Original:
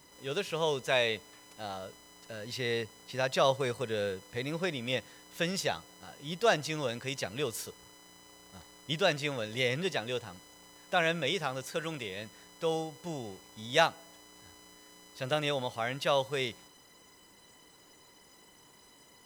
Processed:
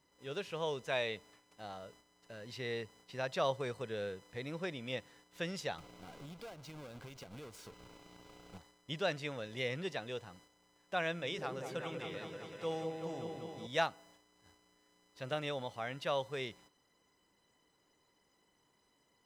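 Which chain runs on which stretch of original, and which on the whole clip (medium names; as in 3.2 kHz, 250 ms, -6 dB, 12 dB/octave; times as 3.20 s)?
5.78–8.58 s: square wave that keeps the level + compression 16:1, threshold -39 dBFS + Butterworth band-stop 1.8 kHz, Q 7.8
11.19–13.67 s: hum notches 50/100/150/200/250/300/350/400 Hz + delay with an opening low-pass 193 ms, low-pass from 750 Hz, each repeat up 1 oct, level -3 dB
whole clip: gate -53 dBFS, range -7 dB; treble shelf 5.8 kHz -9 dB; trim -6.5 dB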